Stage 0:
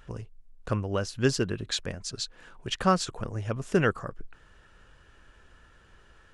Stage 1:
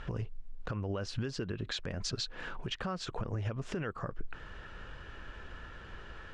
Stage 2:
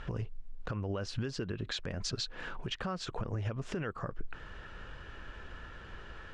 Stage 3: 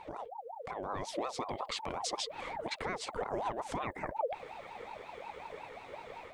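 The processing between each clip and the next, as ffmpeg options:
ffmpeg -i in.wav -af "lowpass=4100,acompressor=threshold=-35dB:ratio=5,alimiter=level_in=11.5dB:limit=-24dB:level=0:latency=1:release=158,volume=-11.5dB,volume=9.5dB" out.wav
ffmpeg -i in.wav -af anull out.wav
ffmpeg -i in.wav -af "dynaudnorm=framelen=570:gausssize=3:maxgain=6.5dB,aexciter=amount=2.1:drive=8.4:freq=7700,aeval=exprs='val(0)*sin(2*PI*690*n/s+690*0.35/5.5*sin(2*PI*5.5*n/s))':channel_layout=same,volume=-4.5dB" out.wav

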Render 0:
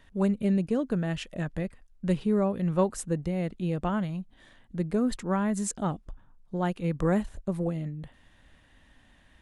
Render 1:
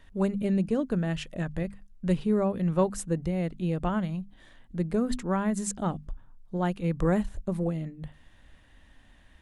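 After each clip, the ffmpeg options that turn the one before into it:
ffmpeg -i in.wav -af "lowshelf=frequency=86:gain=6,bandreject=frequency=50:width_type=h:width=6,bandreject=frequency=100:width_type=h:width=6,bandreject=frequency=150:width_type=h:width=6,bandreject=frequency=200:width_type=h:width=6,bandreject=frequency=250:width_type=h:width=6" out.wav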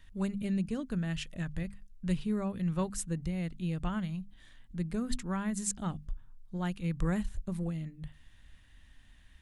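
ffmpeg -i in.wav -af "equalizer=frequency=530:width=0.51:gain=-12.5" out.wav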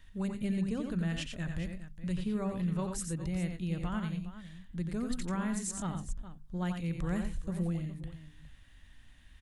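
ffmpeg -i in.wav -filter_complex "[0:a]alimiter=level_in=2.5dB:limit=-24dB:level=0:latency=1:release=55,volume=-2.5dB,asplit=2[link_01][link_02];[link_02]aecho=0:1:89|110|413:0.501|0.188|0.211[link_03];[link_01][link_03]amix=inputs=2:normalize=0" out.wav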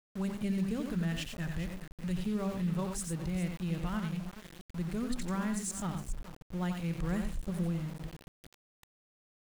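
ffmpeg -i in.wav -af "aeval=exprs='val(0)*gte(abs(val(0)),0.00668)':channel_layout=same" out.wav

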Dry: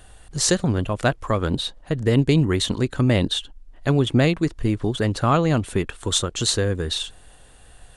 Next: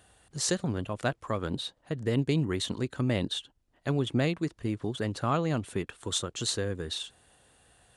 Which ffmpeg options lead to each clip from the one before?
ffmpeg -i in.wav -af "highpass=93,volume=-9dB" out.wav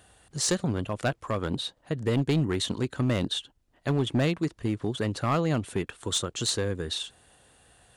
ffmpeg -i in.wav -af "asoftclip=type=hard:threshold=-22dB,volume=3dB" out.wav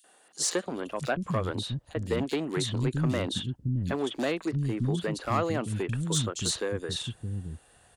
ffmpeg -i in.wav -filter_complex "[0:a]acrossover=split=240|3400[link_01][link_02][link_03];[link_02]adelay=40[link_04];[link_01]adelay=660[link_05];[link_05][link_04][link_03]amix=inputs=3:normalize=0" out.wav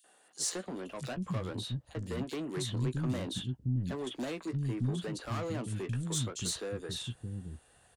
ffmpeg -i in.wav -filter_complex "[0:a]acrossover=split=250|5600[link_01][link_02][link_03];[link_02]asoftclip=type=tanh:threshold=-32dB[link_04];[link_01][link_04][link_03]amix=inputs=3:normalize=0,asplit=2[link_05][link_06];[link_06]adelay=16,volume=-10dB[link_07];[link_05][link_07]amix=inputs=2:normalize=0,volume=-4.5dB" out.wav

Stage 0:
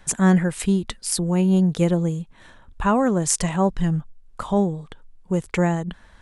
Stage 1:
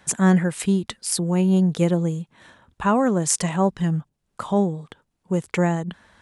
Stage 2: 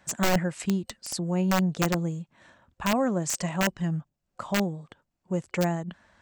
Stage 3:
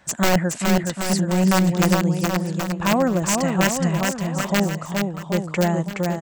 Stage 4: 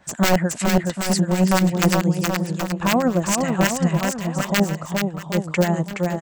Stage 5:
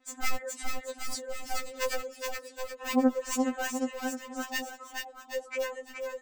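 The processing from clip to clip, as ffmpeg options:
ffmpeg -i in.wav -af "highpass=100" out.wav
ffmpeg -i in.wav -af "aeval=exprs='(mod(3.76*val(0)+1,2)-1)/3.76':channel_layout=same,superequalizer=7b=0.708:8b=1.41:13b=0.708:16b=0.316,volume=-6dB" out.wav
ffmpeg -i in.wav -af "aecho=1:1:420|777|1080|1338|1558:0.631|0.398|0.251|0.158|0.1,volume=5.5dB" out.wav
ffmpeg -i in.wav -filter_complex "[0:a]acrossover=split=1100[link_01][link_02];[link_01]aeval=exprs='val(0)*(1-0.7/2+0.7/2*cos(2*PI*9.1*n/s))':channel_layout=same[link_03];[link_02]aeval=exprs='val(0)*(1-0.7/2-0.7/2*cos(2*PI*9.1*n/s))':channel_layout=same[link_04];[link_03][link_04]amix=inputs=2:normalize=0,volume=3.5dB" out.wav
ffmpeg -i in.wav -af "afftfilt=real='re*3.46*eq(mod(b,12),0)':imag='im*3.46*eq(mod(b,12),0)':win_size=2048:overlap=0.75,volume=-9dB" out.wav

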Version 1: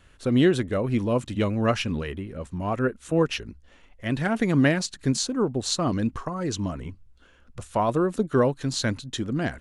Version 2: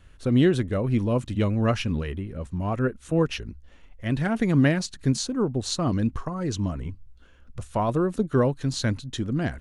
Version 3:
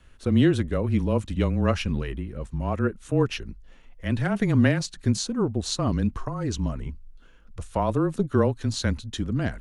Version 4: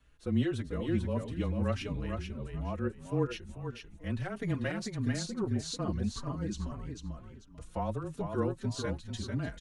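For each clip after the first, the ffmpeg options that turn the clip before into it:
ffmpeg -i in.wav -af "lowshelf=frequency=160:gain=9,bandreject=frequency=7500:width=22,volume=-2.5dB" out.wav
ffmpeg -i in.wav -af "afreqshift=-23" out.wav
ffmpeg -i in.wav -filter_complex "[0:a]aecho=1:1:443|886|1329:0.562|0.141|0.0351,asplit=2[link_01][link_02];[link_02]adelay=4.6,afreqshift=1.6[link_03];[link_01][link_03]amix=inputs=2:normalize=1,volume=-7.5dB" out.wav

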